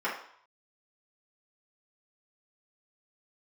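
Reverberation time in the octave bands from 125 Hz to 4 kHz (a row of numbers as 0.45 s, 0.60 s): 0.70 s, 0.50 s, 0.55 s, 0.70 s, 0.60 s, 0.60 s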